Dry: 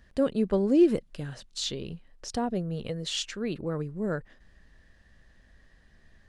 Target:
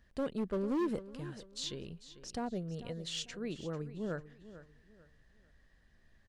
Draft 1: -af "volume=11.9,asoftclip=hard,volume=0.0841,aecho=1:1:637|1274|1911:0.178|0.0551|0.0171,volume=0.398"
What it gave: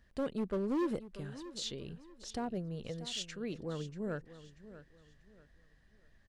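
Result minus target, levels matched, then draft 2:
echo 192 ms late
-af "volume=11.9,asoftclip=hard,volume=0.0841,aecho=1:1:445|890|1335:0.178|0.0551|0.0171,volume=0.398"

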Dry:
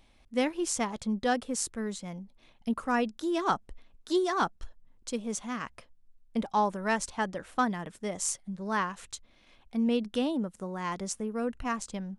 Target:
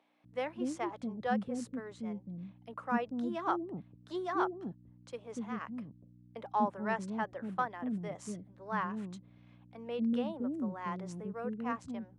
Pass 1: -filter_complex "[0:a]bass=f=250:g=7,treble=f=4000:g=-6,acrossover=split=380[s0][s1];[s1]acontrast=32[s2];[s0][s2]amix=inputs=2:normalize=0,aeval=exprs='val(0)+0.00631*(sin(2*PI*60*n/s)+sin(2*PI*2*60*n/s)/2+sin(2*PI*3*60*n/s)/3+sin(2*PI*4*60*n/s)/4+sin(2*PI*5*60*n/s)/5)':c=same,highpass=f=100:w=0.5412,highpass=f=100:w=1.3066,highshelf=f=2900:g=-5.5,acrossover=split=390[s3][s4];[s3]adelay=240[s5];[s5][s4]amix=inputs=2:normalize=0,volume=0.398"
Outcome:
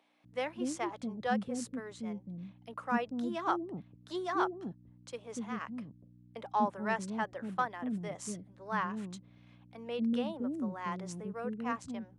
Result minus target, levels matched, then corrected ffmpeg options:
8 kHz band +6.5 dB
-filter_complex "[0:a]bass=f=250:g=7,treble=f=4000:g=-6,acrossover=split=380[s0][s1];[s1]acontrast=32[s2];[s0][s2]amix=inputs=2:normalize=0,aeval=exprs='val(0)+0.00631*(sin(2*PI*60*n/s)+sin(2*PI*2*60*n/s)/2+sin(2*PI*3*60*n/s)/3+sin(2*PI*4*60*n/s)/4+sin(2*PI*5*60*n/s)/5)':c=same,highpass=f=100:w=0.5412,highpass=f=100:w=1.3066,highshelf=f=2900:g=-13.5,acrossover=split=390[s3][s4];[s3]adelay=240[s5];[s5][s4]amix=inputs=2:normalize=0,volume=0.398"

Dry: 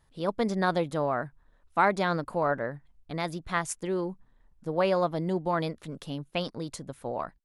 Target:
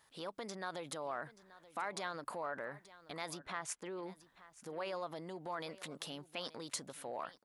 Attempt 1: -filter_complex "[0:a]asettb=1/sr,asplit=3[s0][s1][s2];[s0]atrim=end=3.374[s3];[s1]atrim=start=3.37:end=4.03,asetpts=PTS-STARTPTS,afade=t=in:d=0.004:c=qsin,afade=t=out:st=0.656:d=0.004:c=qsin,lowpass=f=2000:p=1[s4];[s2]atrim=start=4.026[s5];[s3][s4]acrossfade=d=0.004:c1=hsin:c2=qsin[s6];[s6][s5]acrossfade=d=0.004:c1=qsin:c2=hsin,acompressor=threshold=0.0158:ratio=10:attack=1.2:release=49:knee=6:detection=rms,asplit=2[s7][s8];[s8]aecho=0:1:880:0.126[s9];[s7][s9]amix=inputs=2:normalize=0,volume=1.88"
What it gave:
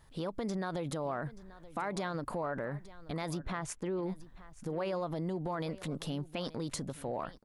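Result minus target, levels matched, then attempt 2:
1 kHz band -2.5 dB
-filter_complex "[0:a]asettb=1/sr,asplit=3[s0][s1][s2];[s0]atrim=end=3.374[s3];[s1]atrim=start=3.37:end=4.03,asetpts=PTS-STARTPTS,afade=t=in:d=0.004:c=qsin,afade=t=out:st=0.656:d=0.004:c=qsin,lowpass=f=2000:p=1[s4];[s2]atrim=start=4.026[s5];[s3][s4]acrossfade=d=0.004:c1=hsin:c2=qsin[s6];[s6][s5]acrossfade=d=0.004:c1=qsin:c2=hsin,acompressor=threshold=0.0158:ratio=10:attack=1.2:release=49:knee=6:detection=rms,highpass=f=1000:p=1,asplit=2[s7][s8];[s8]aecho=0:1:880:0.126[s9];[s7][s9]amix=inputs=2:normalize=0,volume=1.88"

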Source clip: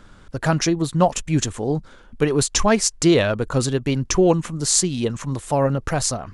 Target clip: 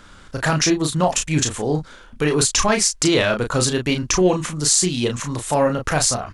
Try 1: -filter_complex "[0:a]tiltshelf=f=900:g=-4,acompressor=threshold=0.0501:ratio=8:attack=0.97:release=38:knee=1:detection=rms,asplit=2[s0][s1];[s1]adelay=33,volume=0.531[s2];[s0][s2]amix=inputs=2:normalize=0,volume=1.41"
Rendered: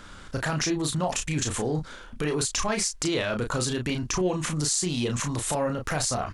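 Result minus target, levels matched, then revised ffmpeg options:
compression: peak gain reduction +9.5 dB
-filter_complex "[0:a]tiltshelf=f=900:g=-4,acompressor=threshold=0.178:ratio=8:attack=0.97:release=38:knee=1:detection=rms,asplit=2[s0][s1];[s1]adelay=33,volume=0.531[s2];[s0][s2]amix=inputs=2:normalize=0,volume=1.41"

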